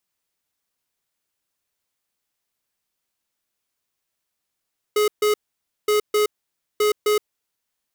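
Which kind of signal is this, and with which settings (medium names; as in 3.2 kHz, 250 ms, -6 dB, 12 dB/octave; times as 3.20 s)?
beep pattern square 421 Hz, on 0.12 s, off 0.14 s, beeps 2, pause 0.54 s, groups 3, -18 dBFS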